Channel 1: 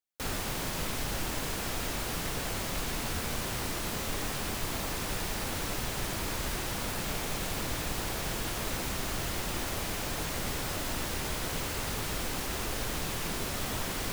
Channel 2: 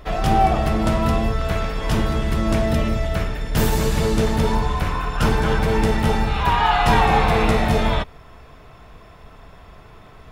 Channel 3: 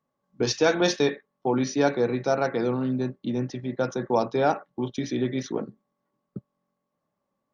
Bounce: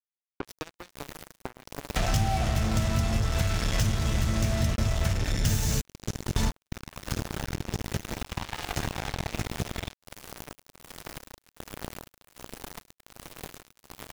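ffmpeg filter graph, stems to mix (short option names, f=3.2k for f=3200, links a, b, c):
-filter_complex "[0:a]tiltshelf=f=830:g=3.5,aeval=exprs='val(0)*pow(10,-19*(0.5-0.5*cos(2*PI*1.3*n/s))/20)':c=same,adelay=300,volume=-1.5dB,asplit=2[a][b];[b]volume=-11dB[c];[1:a]equalizer=f=100:t=o:w=0.67:g=10,equalizer=f=400:t=o:w=0.67:g=-10,equalizer=f=1k:t=o:w=0.67:g=-9,equalizer=f=6.3k:t=o:w=0.67:g=12,adelay=1900,volume=-0.5dB[d];[2:a]highpass=f=45:w=0.5412,highpass=f=45:w=1.3066,volume=-10.5dB,asplit=2[e][f];[f]apad=whole_len=538862[g];[d][g]sidechaingate=range=-19dB:threshold=-59dB:ratio=16:detection=peak[h];[a][e]amix=inputs=2:normalize=0,adynamicequalizer=threshold=0.00224:dfrequency=4600:dqfactor=0.72:tfrequency=4600:tqfactor=0.72:attack=5:release=100:ratio=0.375:range=2.5:mode=cutabove:tftype=bell,acompressor=threshold=-43dB:ratio=5,volume=0dB[i];[c]aecho=0:1:106|212|318|424|530|636|742:1|0.49|0.24|0.118|0.0576|0.0282|0.0138[j];[h][i][j]amix=inputs=3:normalize=0,acompressor=mode=upward:threshold=-21dB:ratio=2.5,acrusher=bits=3:mix=0:aa=0.5,acompressor=threshold=-22dB:ratio=6"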